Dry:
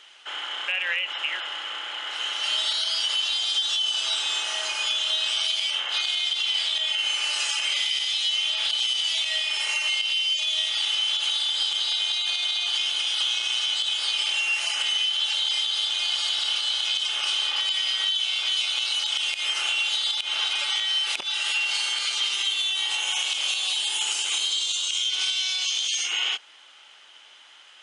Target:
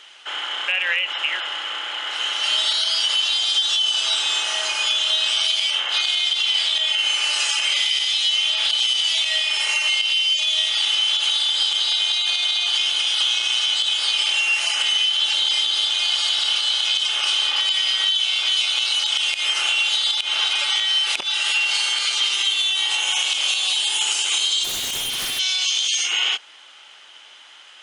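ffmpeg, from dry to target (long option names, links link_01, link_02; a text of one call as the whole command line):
ffmpeg -i in.wav -filter_complex "[0:a]asettb=1/sr,asplit=3[link_01][link_02][link_03];[link_01]atrim=end=15.224[link_04];[link_02]atrim=start=15.22:end=15.9,asetpts=PTS-STARTPTS,afade=type=in:duration=0.004:curve=qsin,afade=type=out:start_time=0.676:duration=0.004:curve=qsin,equalizer=frequency=220:width_type=o:width=1.6:gain=6[link_05];[link_03]atrim=start=15.896[link_06];[link_04][link_05]acrossfade=duration=0.004:curve1=hsin:curve2=qsin[link_07];[link_07][link_06]acrossfade=duration=0.004:curve1=qsin:curve2=hsin,asplit=3[link_08][link_09][link_10];[link_08]afade=type=out:start_time=24.63:duration=0.02[link_11];[link_09]aeval=exprs='0.0531*(abs(mod(val(0)/0.0531+3,4)-2)-1)':channel_layout=same,afade=type=in:start_time=24.63:duration=0.02,afade=type=out:start_time=25.38:duration=0.02[link_12];[link_10]afade=type=in:start_time=25.38:duration=0.02[link_13];[link_11][link_12][link_13]amix=inputs=3:normalize=0,volume=5dB" out.wav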